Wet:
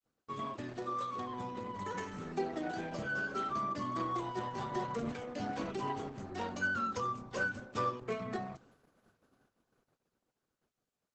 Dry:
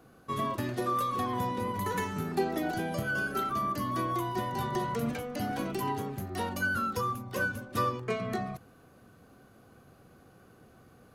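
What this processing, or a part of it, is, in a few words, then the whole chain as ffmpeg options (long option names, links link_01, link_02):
video call: -af "highpass=frequency=160:poles=1,dynaudnorm=framelen=590:gausssize=9:maxgain=4dB,agate=range=-39dB:threshold=-55dB:ratio=16:detection=peak,volume=-7dB" -ar 48000 -c:a libopus -b:a 12k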